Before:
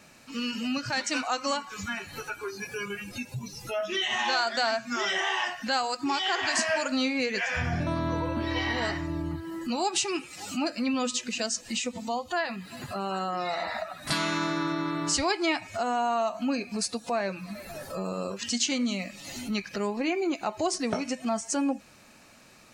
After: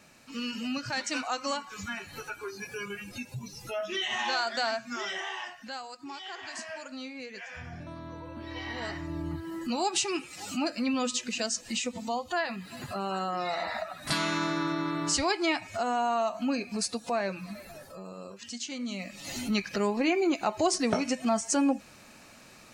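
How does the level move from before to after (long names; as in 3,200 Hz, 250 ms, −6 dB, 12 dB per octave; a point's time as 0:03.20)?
0:04.68 −3 dB
0:05.90 −13.5 dB
0:08.20 −13.5 dB
0:09.39 −1 dB
0:17.46 −1 dB
0:17.97 −10.5 dB
0:18.68 −10.5 dB
0:19.31 +2 dB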